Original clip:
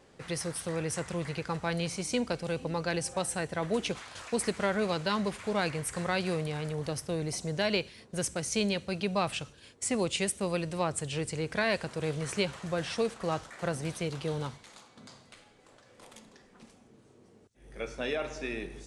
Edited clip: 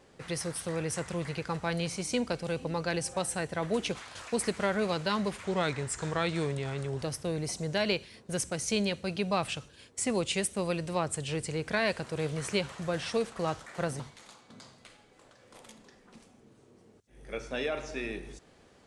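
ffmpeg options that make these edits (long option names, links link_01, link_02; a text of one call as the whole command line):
ffmpeg -i in.wav -filter_complex "[0:a]asplit=4[link_01][link_02][link_03][link_04];[link_01]atrim=end=5.444[link_05];[link_02]atrim=start=5.44:end=6.86,asetpts=PTS-STARTPTS,asetrate=39690,aresample=44100[link_06];[link_03]atrim=start=6.856:end=13.842[link_07];[link_04]atrim=start=14.468[link_08];[link_05][link_06]acrossfade=duration=0.004:curve1=hsin:curve2=hsin[link_09];[link_09][link_07]acrossfade=duration=0.004:curve1=hsin:curve2=hsin[link_10];[link_10][link_08]acrossfade=duration=0.004:curve1=hsin:curve2=hsin" out.wav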